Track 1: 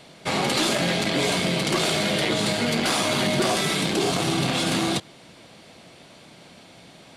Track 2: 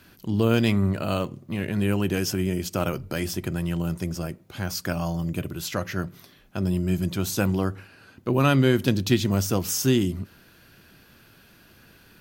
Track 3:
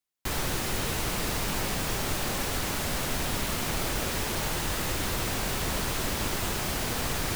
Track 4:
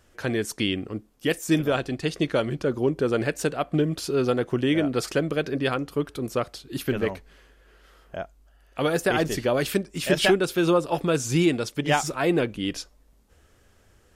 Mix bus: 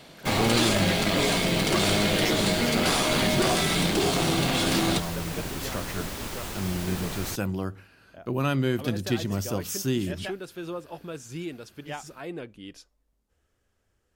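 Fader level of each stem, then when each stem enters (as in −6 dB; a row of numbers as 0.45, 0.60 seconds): −1.5, −6.0, −5.5, −14.5 decibels; 0.00, 0.00, 0.00, 0.00 seconds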